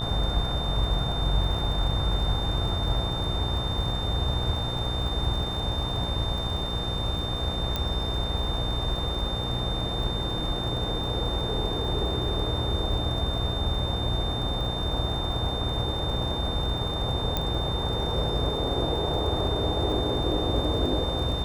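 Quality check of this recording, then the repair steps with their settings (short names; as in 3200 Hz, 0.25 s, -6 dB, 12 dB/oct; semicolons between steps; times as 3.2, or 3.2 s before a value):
buzz 60 Hz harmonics 20 -33 dBFS
crackle 52/s -35 dBFS
tone 3600 Hz -32 dBFS
7.76 pop -13 dBFS
17.37 pop -12 dBFS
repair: de-click; de-hum 60 Hz, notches 20; notch 3600 Hz, Q 30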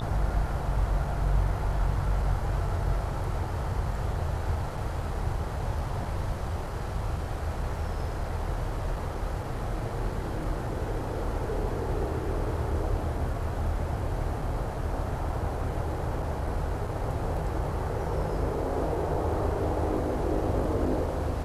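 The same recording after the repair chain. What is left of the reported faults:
7.76 pop
17.37 pop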